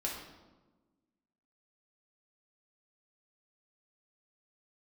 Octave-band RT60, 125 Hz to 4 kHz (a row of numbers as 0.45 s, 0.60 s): 1.5 s, 1.8 s, 1.3 s, 1.1 s, 0.85 s, 0.80 s